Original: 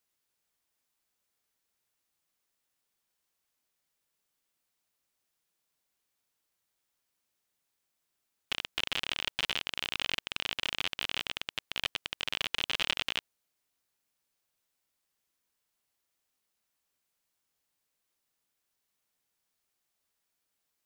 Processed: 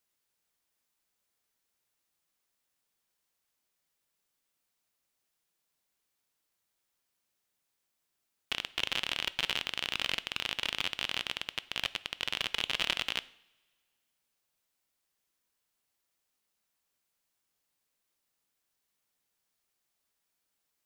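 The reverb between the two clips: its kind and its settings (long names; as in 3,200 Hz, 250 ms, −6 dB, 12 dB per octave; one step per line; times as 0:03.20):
coupled-rooms reverb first 0.63 s, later 2.1 s, from −20 dB, DRR 16 dB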